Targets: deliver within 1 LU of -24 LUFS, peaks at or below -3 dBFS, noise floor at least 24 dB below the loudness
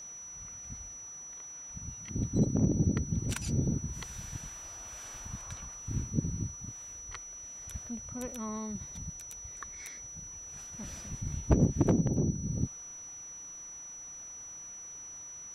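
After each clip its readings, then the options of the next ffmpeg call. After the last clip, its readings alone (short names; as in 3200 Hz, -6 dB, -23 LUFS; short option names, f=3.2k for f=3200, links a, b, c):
steady tone 5900 Hz; tone level -43 dBFS; loudness -35.5 LUFS; peak -11.0 dBFS; loudness target -24.0 LUFS
-> -af "bandreject=f=5.9k:w=30"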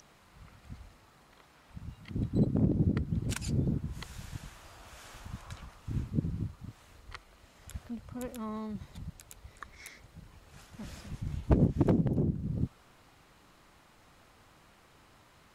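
steady tone none; loudness -33.0 LUFS; peak -11.0 dBFS; loudness target -24.0 LUFS
-> -af "volume=9dB,alimiter=limit=-3dB:level=0:latency=1"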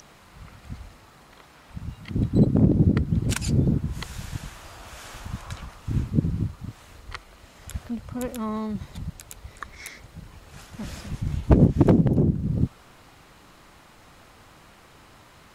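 loudness -24.0 LUFS; peak -3.0 dBFS; noise floor -52 dBFS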